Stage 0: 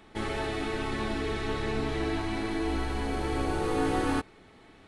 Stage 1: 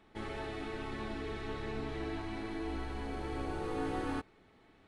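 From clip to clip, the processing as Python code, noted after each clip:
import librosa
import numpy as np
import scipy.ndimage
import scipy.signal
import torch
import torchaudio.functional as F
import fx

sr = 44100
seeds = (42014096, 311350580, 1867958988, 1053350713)

y = fx.high_shelf(x, sr, hz=5700.0, db=-7.5)
y = y * 10.0 ** (-8.5 / 20.0)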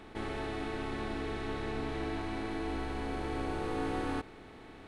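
y = fx.bin_compress(x, sr, power=0.6)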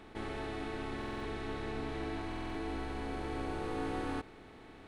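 y = fx.buffer_glitch(x, sr, at_s=(0.97, 2.27), block=2048, repeats=5)
y = y * 10.0 ** (-2.5 / 20.0)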